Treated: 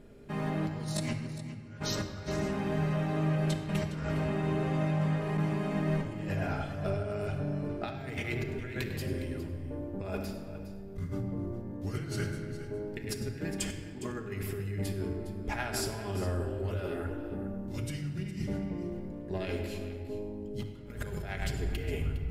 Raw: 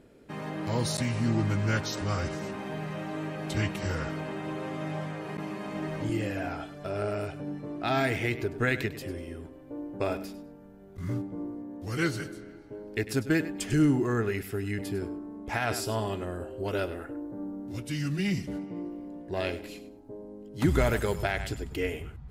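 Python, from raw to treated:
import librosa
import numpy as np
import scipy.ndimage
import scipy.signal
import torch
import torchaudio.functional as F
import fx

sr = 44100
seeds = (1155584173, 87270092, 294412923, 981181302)

y = fx.low_shelf(x, sr, hz=140.0, db=10.0)
y = fx.hum_notches(y, sr, base_hz=60, count=6)
y = fx.over_compress(y, sr, threshold_db=-31.0, ratio=-0.5)
y = y + 10.0 ** (-14.0 / 20.0) * np.pad(y, (int(410 * sr / 1000.0), 0))[:len(y)]
y = fx.room_shoebox(y, sr, seeds[0], volume_m3=2700.0, walls='mixed', distance_m=1.3)
y = F.gain(torch.from_numpy(y), -4.5).numpy()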